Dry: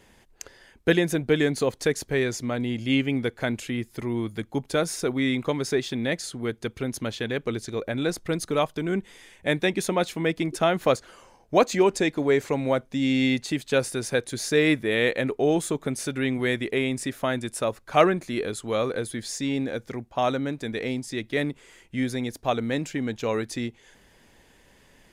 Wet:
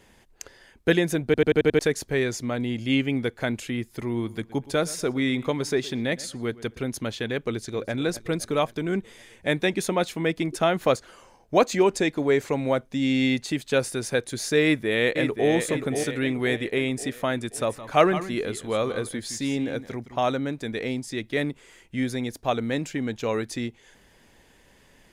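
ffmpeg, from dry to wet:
ffmpeg -i in.wav -filter_complex "[0:a]asettb=1/sr,asplit=3[link_01][link_02][link_03];[link_01]atrim=end=3.894[link_04];[link_02]atrim=start=3.89:end=6.79,asetpts=PTS-STARTPTS,afade=type=in:duration=0.004:curve=qsin,afade=type=out:start_time=2.896:duration=0.004:curve=qsin,asplit=2[link_05][link_06];[link_06]adelay=118,lowpass=frequency=2900:poles=1,volume=-19dB,asplit=2[link_07][link_08];[link_08]adelay=118,lowpass=frequency=2900:poles=1,volume=0.35,asplit=2[link_09][link_10];[link_10]adelay=118,lowpass=frequency=2900:poles=1,volume=0.35[link_11];[link_05][link_07][link_09][link_11]amix=inputs=4:normalize=0,atrim=end_sample=127890[link_12];[link_03]atrim=start=6.786[link_13];[link_04][link_12]acrossfade=duration=0.004:curve1=hsin:curve2=qsin[link_14];[link_14][link_13]acrossfade=duration=0.004:curve1=qsin:curve2=hsin,asplit=2[link_15][link_16];[link_16]afade=type=in:start_time=7.48:duration=0.01,afade=type=out:start_time=7.93:duration=0.01,aecho=0:1:260|520|780|1040|1300|1560|1820|2080|2340:0.177828|0.12448|0.0871357|0.060995|0.0426965|0.0298875|0.0209213|0.0146449|0.0102514[link_17];[link_15][link_17]amix=inputs=2:normalize=0,asplit=2[link_18][link_19];[link_19]afade=type=in:start_time=14.62:duration=0.01,afade=type=out:start_time=15.5:duration=0.01,aecho=0:1:530|1060|1590|2120|2650|3180:0.473151|0.236576|0.118288|0.0591439|0.029572|0.014786[link_20];[link_18][link_20]amix=inputs=2:normalize=0,asettb=1/sr,asplit=3[link_21][link_22][link_23];[link_21]atrim=end=17.414[link_24];[link_22]atrim=start=17.41:end=20.23,asetpts=PTS-STARTPTS,afade=type=in:duration=0.004:curve=qsin,afade=type=out:start_time=2.816:duration=0.004:curve=qsin,aecho=1:1:164|165:0.119|0.237,atrim=end_sample=124362[link_25];[link_23]atrim=start=20.226[link_26];[link_24][link_25]acrossfade=duration=0.004:curve1=hsin:curve2=qsin[link_27];[link_27][link_26]acrossfade=duration=0.004:curve1=qsin:curve2=hsin,asplit=7[link_28][link_29][link_30][link_31][link_32][link_33][link_34];[link_28]atrim=end=1.342[link_35];[link_29]atrim=start=1.248:end=1.342[link_36];[link_30]atrim=start=1.248:end=1.342[link_37];[link_31]atrim=start=1.248:end=1.342[link_38];[link_32]atrim=start=1.248:end=1.342[link_39];[link_33]atrim=start=1.248:end=1.342[link_40];[link_34]atrim=start=1.788[link_41];[link_35][link_36]acrossfade=duration=0.004:curve1=hsin:curve2=hsin[link_42];[link_42][link_37]acrossfade=duration=0.004:curve1=hsin:curve2=hsin[link_43];[link_43][link_38]acrossfade=duration=0.004:curve1=hsin:curve2=hsin[link_44];[link_44][link_39]acrossfade=duration=0.004:curve1=hsin:curve2=hsin[link_45];[link_45][link_40]acrossfade=duration=0.004:curve1=hsin:curve2=hsin[link_46];[link_46][link_41]acrossfade=duration=0.004:curve1=hsin:curve2=hsin" out.wav

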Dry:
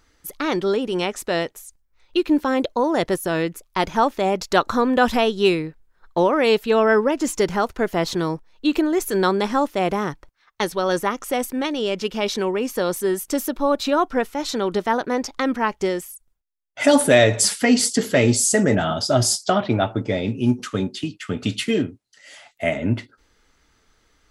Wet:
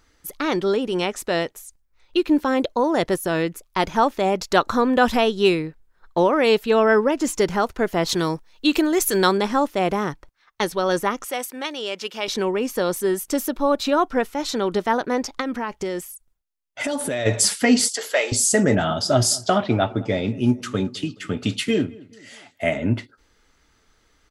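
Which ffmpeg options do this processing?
ffmpeg -i in.wav -filter_complex "[0:a]asettb=1/sr,asplit=3[link_01][link_02][link_03];[link_01]atrim=end=8.094[link_04];[link_02]atrim=start=8.09:end=9.38,asetpts=PTS-STARTPTS,afade=type=in:duration=0.004:curve=qsin,afade=type=out:start_time=1.286:duration=0.004:curve=qsin,highshelf=frequency=2100:gain=8[link_05];[link_03]atrim=start=9.376[link_06];[link_04][link_05]acrossfade=duration=0.004:curve1=hsin:curve2=qsin[link_07];[link_07][link_06]acrossfade=duration=0.004:curve1=qsin:curve2=hsin,asettb=1/sr,asplit=3[link_08][link_09][link_10];[link_08]atrim=end=11.254[link_11];[link_09]atrim=start=11.25:end=12.28,asetpts=PTS-STARTPTS,afade=type=in:duration=0.004:curve=qsin,afade=type=out:start_time=1.026:duration=0.004:curve=qsin,highpass=frequency=860:poles=1[link_12];[link_10]atrim=start=12.276[link_13];[link_11][link_12]acrossfade=duration=0.004:curve1=hsin:curve2=qsin[link_14];[link_14][link_13]acrossfade=duration=0.004:curve1=qsin:curve2=hsin,asplit=3[link_15][link_16][link_17];[link_15]afade=type=out:start_time=15.4:duration=0.02[link_18];[link_16]acompressor=threshold=-22dB:ratio=6:attack=3.2:release=140:knee=1:detection=peak,afade=type=in:start_time=15.4:duration=0.02,afade=type=out:start_time=17.25:duration=0.02[link_19];[link_17]afade=type=in:start_time=17.25:duration=0.02[link_20];[link_18][link_19][link_20]amix=inputs=3:normalize=0,asettb=1/sr,asplit=3[link_21][link_22][link_23];[link_21]atrim=end=17.884[link_24];[link_22]atrim=start=17.88:end=18.32,asetpts=PTS-STARTPTS,afade=type=in:duration=0.004:curve=qsin,afade=type=out:start_time=0.436:duration=0.004:curve=qsin,highpass=frequency=550:width=0.5412,highpass=frequency=550:width=1.3066[link_25];[link_23]atrim=start=18.316[link_26];[link_24][link_25]acrossfade=duration=0.004:curve1=hsin:curve2=qsin[link_27];[link_27][link_26]acrossfade=duration=0.004:curve1=qsin:curve2=hsin,asplit=3[link_28][link_29][link_30];[link_28]afade=type=out:start_time=19.03:duration=0.02[link_31];[link_29]asplit=2[link_32][link_33];[link_33]adelay=212,lowpass=frequency=2000:poles=1,volume=-22dB,asplit=2[link_34][link_35];[link_35]adelay=212,lowpass=frequency=2000:poles=1,volume=0.5,asplit=2[link_36][link_37];[link_37]adelay=212,lowpass=frequency=2000:poles=1,volume=0.5[link_38];[link_32][link_34][link_36][link_38]amix=inputs=4:normalize=0,afade=type=in:start_time=19.03:duration=0.02,afade=type=out:start_time=22.76:duration=0.02[link_39];[link_30]afade=type=in:start_time=22.76:duration=0.02[link_40];[link_31][link_39][link_40]amix=inputs=3:normalize=0" out.wav

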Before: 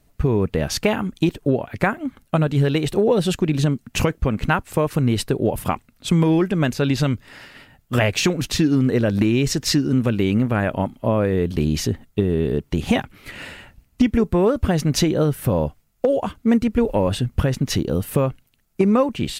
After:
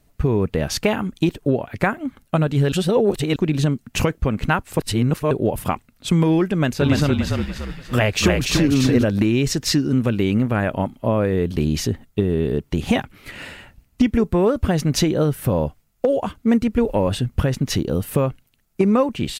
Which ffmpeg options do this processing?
ffmpeg -i in.wav -filter_complex "[0:a]asplit=3[link_01][link_02][link_03];[link_01]afade=type=out:start_time=6.79:duration=0.02[link_04];[link_02]asplit=7[link_05][link_06][link_07][link_08][link_09][link_10][link_11];[link_06]adelay=290,afreqshift=-37,volume=-3dB[link_12];[link_07]adelay=580,afreqshift=-74,volume=-10.3dB[link_13];[link_08]adelay=870,afreqshift=-111,volume=-17.7dB[link_14];[link_09]adelay=1160,afreqshift=-148,volume=-25dB[link_15];[link_10]adelay=1450,afreqshift=-185,volume=-32.3dB[link_16];[link_11]adelay=1740,afreqshift=-222,volume=-39.7dB[link_17];[link_05][link_12][link_13][link_14][link_15][link_16][link_17]amix=inputs=7:normalize=0,afade=type=in:start_time=6.79:duration=0.02,afade=type=out:start_time=9.03:duration=0.02[link_18];[link_03]afade=type=in:start_time=9.03:duration=0.02[link_19];[link_04][link_18][link_19]amix=inputs=3:normalize=0,asplit=5[link_20][link_21][link_22][link_23][link_24];[link_20]atrim=end=2.722[link_25];[link_21]atrim=start=2.718:end=3.362,asetpts=PTS-STARTPTS,areverse[link_26];[link_22]atrim=start=3.358:end=4.792[link_27];[link_23]atrim=start=4.788:end=5.312,asetpts=PTS-STARTPTS,areverse[link_28];[link_24]atrim=start=5.308[link_29];[link_25][link_26]acrossfade=duration=0.004:curve1=hsin:curve2=hsin[link_30];[link_30][link_27]acrossfade=duration=0.004:curve1=hsin:curve2=hsin[link_31];[link_31][link_28]acrossfade=duration=0.004:curve1=hsin:curve2=hsin[link_32];[link_32][link_29]acrossfade=duration=0.004:curve1=hsin:curve2=hsin" out.wav

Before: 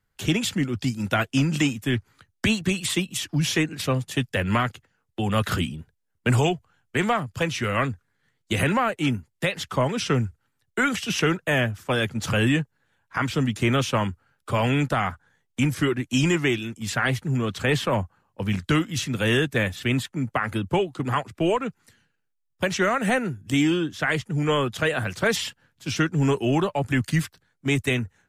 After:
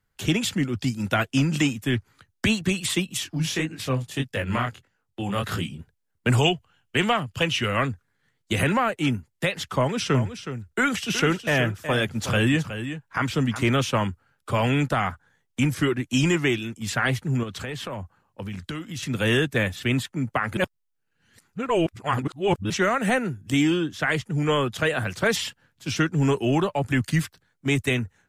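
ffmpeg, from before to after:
ffmpeg -i in.wav -filter_complex "[0:a]asplit=3[link_01][link_02][link_03];[link_01]afade=type=out:start_time=3.23:duration=0.02[link_04];[link_02]flanger=delay=18:depth=7.7:speed=1.6,afade=type=in:start_time=3.23:duration=0.02,afade=type=out:start_time=5.78:duration=0.02[link_05];[link_03]afade=type=in:start_time=5.78:duration=0.02[link_06];[link_04][link_05][link_06]amix=inputs=3:normalize=0,asettb=1/sr,asplit=3[link_07][link_08][link_09];[link_07]atrim=end=6.404[link_10];[link_08]atrim=start=6.4:end=7.66,asetpts=PTS-STARTPTS,afade=type=in:duration=0.004:curve=qsin,afade=type=out:start_time=1.256:duration=0.004:curve=qsin,equalizer=frequency=2900:width_type=o:width=0.33:gain=10.5[link_11];[link_09]atrim=start=7.656[link_12];[link_10][link_11]acrossfade=duration=0.004:curve1=hsin:curve2=qsin[link_13];[link_13][link_12]acrossfade=duration=0.004:curve1=qsin:curve2=hsin,asettb=1/sr,asplit=3[link_14][link_15][link_16];[link_14]atrim=end=9.774[link_17];[link_15]atrim=start=9.77:end=13.69,asetpts=PTS-STARTPTS,afade=type=in:duration=0.004:curve=qsin,afade=type=out:start_time=3.916:duration=0.004:curve=qsin,aecho=1:1:369:0.299,atrim=end_sample=172872[link_18];[link_16]atrim=start=13.686[link_19];[link_17][link_18]acrossfade=duration=0.004:curve1=hsin:curve2=qsin[link_20];[link_20][link_19]acrossfade=duration=0.004:curve1=qsin:curve2=hsin,asettb=1/sr,asplit=3[link_21][link_22][link_23];[link_21]atrim=end=17.434[link_24];[link_22]atrim=start=17.43:end=19.03,asetpts=PTS-STARTPTS,afade=type=in:duration=0.004:curve=qsin,afade=type=out:start_time=1.596:duration=0.004:curve=qsin,acompressor=threshold=-30dB:ratio=5:attack=3.2:release=140:knee=1:detection=peak[link_25];[link_23]atrim=start=19.026[link_26];[link_24][link_25]acrossfade=duration=0.004:curve1=hsin:curve2=qsin[link_27];[link_27][link_26]acrossfade=duration=0.004:curve1=qsin:curve2=hsin,asplit=3[link_28][link_29][link_30];[link_28]atrim=end=20.572[link_31];[link_29]atrim=start=20.568:end=22.702,asetpts=PTS-STARTPTS,areverse[link_32];[link_30]atrim=start=22.698[link_33];[link_31][link_32]acrossfade=duration=0.004:curve1=hsin:curve2=hsin[link_34];[link_34][link_33]acrossfade=duration=0.004:curve1=hsin:curve2=hsin" out.wav

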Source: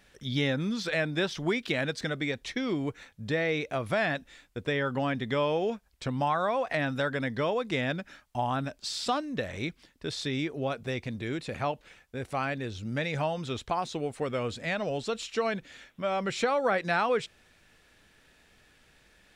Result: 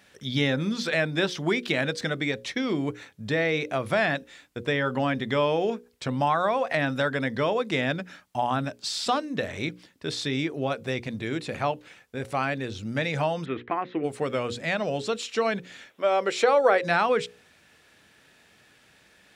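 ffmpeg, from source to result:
ffmpeg -i in.wav -filter_complex "[0:a]asplit=3[link_01][link_02][link_03];[link_01]afade=type=out:start_time=13.44:duration=0.02[link_04];[link_02]highpass=140,equalizer=frequency=170:width_type=q:width=4:gain=-7,equalizer=frequency=320:width_type=q:width=4:gain=7,equalizer=frequency=580:width_type=q:width=4:gain=-6,equalizer=frequency=850:width_type=q:width=4:gain=-5,equalizer=frequency=1900:width_type=q:width=4:gain=9,lowpass=frequency=2400:width=0.5412,lowpass=frequency=2400:width=1.3066,afade=type=in:start_time=13.44:duration=0.02,afade=type=out:start_time=14.03:duration=0.02[link_05];[link_03]afade=type=in:start_time=14.03:duration=0.02[link_06];[link_04][link_05][link_06]amix=inputs=3:normalize=0,asettb=1/sr,asplit=3[link_07][link_08][link_09];[link_07]atrim=end=15.904[link_10];[link_08]atrim=start=15.9:end=16.83,asetpts=PTS-STARTPTS,afade=type=in:duration=0.004:curve=qsin,afade=type=out:start_time=0.926:duration=0.004:curve=qsin,highpass=frequency=410:width_type=q:width=1.7[link_11];[link_09]atrim=start=16.826[link_12];[link_10][link_11]acrossfade=duration=0.004:curve1=hsin:curve2=qsin[link_13];[link_13][link_12]acrossfade=duration=0.004:curve1=qsin:curve2=hsin,highpass=98,bandreject=frequency=60:width_type=h:width=6,bandreject=frequency=120:width_type=h:width=6,bandreject=frequency=180:width_type=h:width=6,bandreject=frequency=240:width_type=h:width=6,bandreject=frequency=300:width_type=h:width=6,bandreject=frequency=360:width_type=h:width=6,bandreject=frequency=420:width_type=h:width=6,bandreject=frequency=480:width_type=h:width=6,bandreject=frequency=540:width_type=h:width=6,volume=4dB" out.wav

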